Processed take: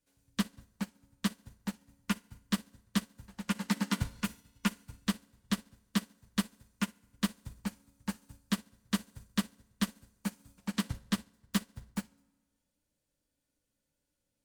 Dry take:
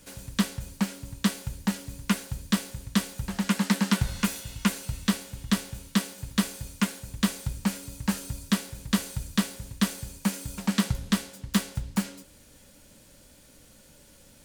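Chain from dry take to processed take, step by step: FDN reverb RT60 1.4 s, low-frequency decay 1.05×, high-frequency decay 0.65×, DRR 5 dB; upward expander 2.5:1, over -37 dBFS; gain -4.5 dB

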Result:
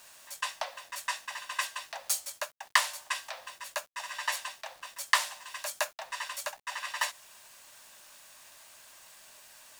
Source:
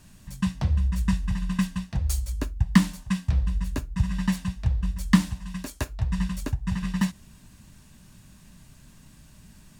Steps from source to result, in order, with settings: steep high-pass 540 Hz 96 dB/oct; bit-crush 10-bit; gain +4.5 dB

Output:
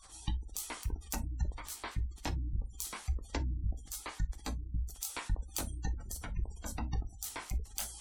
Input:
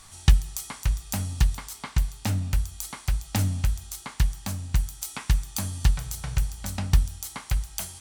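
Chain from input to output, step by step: cycle switcher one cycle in 3, inverted; bell 130 Hz -14 dB 0.82 oct; compressor 16:1, threshold -25 dBFS, peak gain reduction 14 dB; chorus 2.9 Hz, delay 15.5 ms, depth 6.2 ms; on a send: thin delay 0.264 s, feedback 85%, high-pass 1700 Hz, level -21 dB; on the sum: spectral gate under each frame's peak -20 dB strong; non-linear reverb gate 80 ms falling, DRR 10 dB; gain -1.5 dB

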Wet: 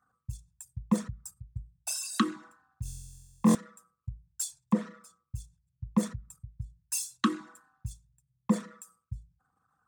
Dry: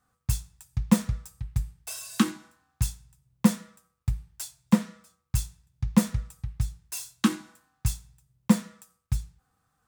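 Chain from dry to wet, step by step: formant sharpening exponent 2; in parallel at -2 dB: limiter -17.5 dBFS, peak gain reduction 10 dB; on the sum: HPF 410 Hz 6 dB/oct; 2.83–3.55 flutter echo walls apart 3.9 m, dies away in 1.4 s; gain -1.5 dB

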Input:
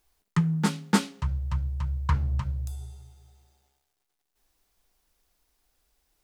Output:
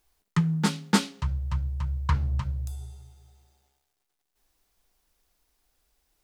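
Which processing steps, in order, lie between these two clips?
dynamic EQ 4200 Hz, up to +4 dB, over -50 dBFS, Q 0.92

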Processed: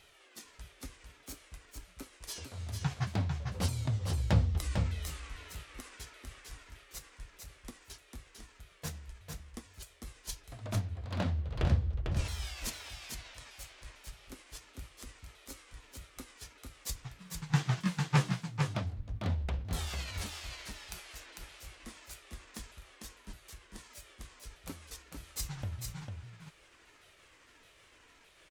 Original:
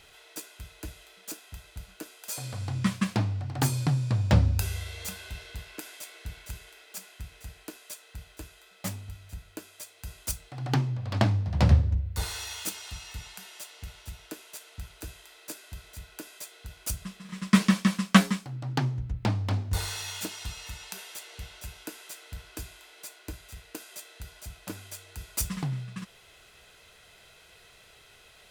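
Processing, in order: repeated pitch sweeps -8 st, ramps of 0.614 s; echo 0.449 s -5 dB; gain -6 dB

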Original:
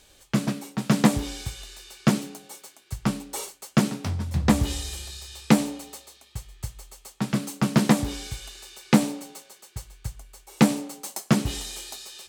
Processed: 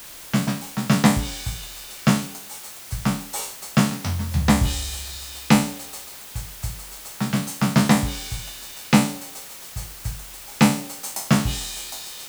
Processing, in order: spectral trails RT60 0.42 s; bell 370 Hz -8.5 dB 0.88 oct; added noise white -43 dBFS; gain +2.5 dB

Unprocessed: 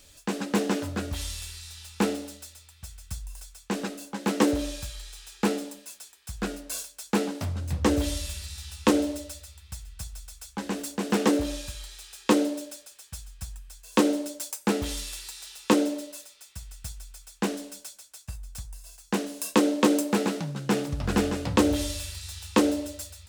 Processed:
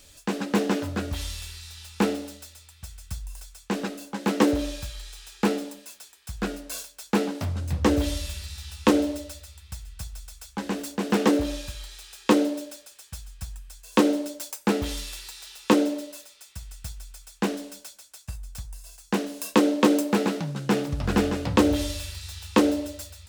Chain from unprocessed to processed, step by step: dynamic EQ 8800 Hz, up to -5 dB, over -49 dBFS, Q 0.83; gain +2 dB

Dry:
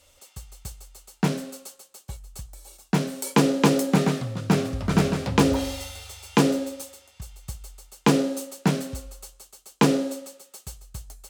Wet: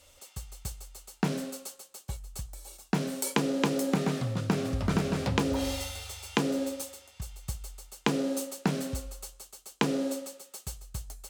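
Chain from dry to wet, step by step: compressor 12:1, threshold -23 dBFS, peak gain reduction 11.5 dB

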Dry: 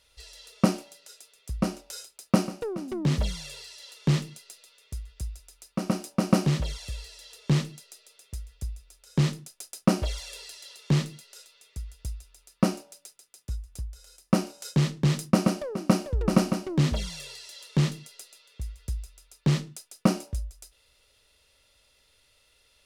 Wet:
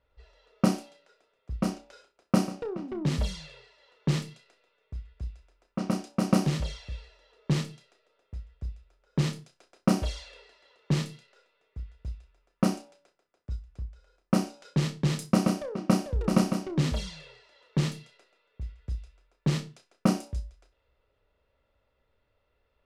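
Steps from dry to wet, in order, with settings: low-pass opened by the level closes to 1200 Hz, open at -21 dBFS; flutter echo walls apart 5.4 m, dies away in 0.21 s; gain -2.5 dB

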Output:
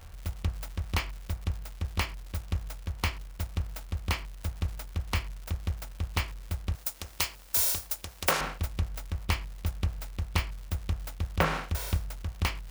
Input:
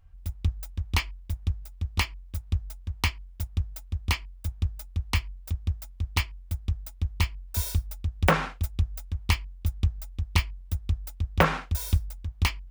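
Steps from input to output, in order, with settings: per-bin compression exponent 0.6; 6.75–8.41 tone controls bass -13 dB, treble +13 dB; crackle 210/s -33 dBFS; gain -6.5 dB

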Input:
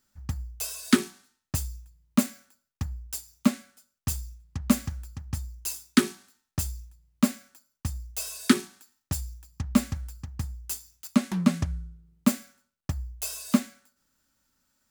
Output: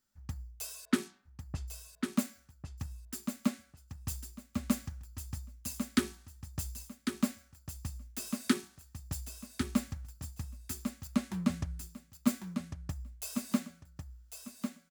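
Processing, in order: 0.85–1.68 low-pass opened by the level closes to 850 Hz, open at -18.5 dBFS; on a send: feedback echo 1.099 s, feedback 23%, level -6.5 dB; on the sum: gain -8.5 dB

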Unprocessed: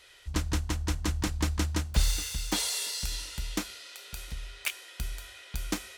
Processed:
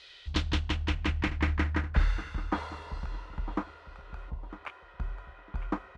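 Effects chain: spectral delete 4.3–4.5, 1100–11000 Hz; feedback echo 0.954 s, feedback 26%, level -14 dB; low-pass sweep 4300 Hz -> 1100 Hz, 0.01–2.82

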